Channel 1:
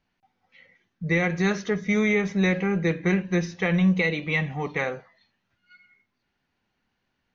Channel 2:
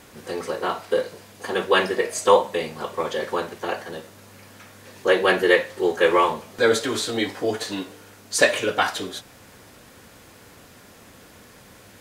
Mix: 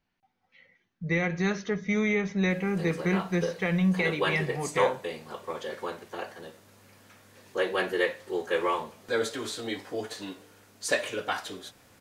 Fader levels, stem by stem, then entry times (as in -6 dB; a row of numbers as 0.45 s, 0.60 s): -4.0 dB, -9.5 dB; 0.00 s, 2.50 s